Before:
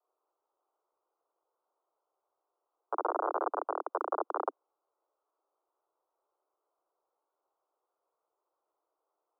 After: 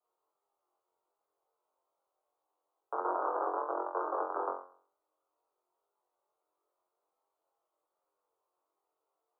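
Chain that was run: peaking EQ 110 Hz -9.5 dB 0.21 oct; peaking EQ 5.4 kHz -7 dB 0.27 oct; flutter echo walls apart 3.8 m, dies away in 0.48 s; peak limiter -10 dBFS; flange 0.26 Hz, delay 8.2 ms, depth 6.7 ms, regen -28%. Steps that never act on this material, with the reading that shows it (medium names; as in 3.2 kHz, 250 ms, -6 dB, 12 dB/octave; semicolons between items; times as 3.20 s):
peaking EQ 110 Hz: input has nothing below 250 Hz; peaking EQ 5.4 kHz: input has nothing above 1.7 kHz; peak limiter -10 dBFS: peak at its input -15.0 dBFS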